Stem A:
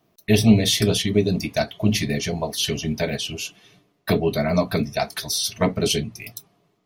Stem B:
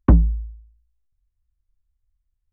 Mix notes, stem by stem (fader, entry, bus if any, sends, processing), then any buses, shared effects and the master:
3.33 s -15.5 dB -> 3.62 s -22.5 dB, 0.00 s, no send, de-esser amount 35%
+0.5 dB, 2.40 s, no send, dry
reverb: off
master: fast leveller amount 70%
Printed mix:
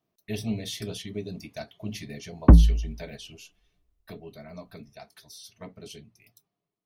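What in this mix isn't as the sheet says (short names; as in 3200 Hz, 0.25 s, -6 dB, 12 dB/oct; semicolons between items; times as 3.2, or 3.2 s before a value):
stem A: missing de-esser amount 35%; master: missing fast leveller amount 70%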